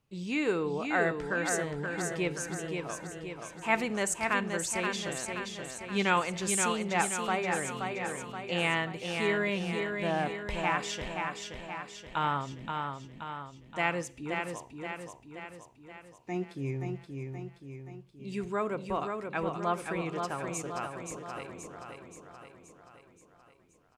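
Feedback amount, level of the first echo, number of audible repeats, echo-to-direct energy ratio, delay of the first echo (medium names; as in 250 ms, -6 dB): 55%, -5.0 dB, 6, -3.5 dB, 526 ms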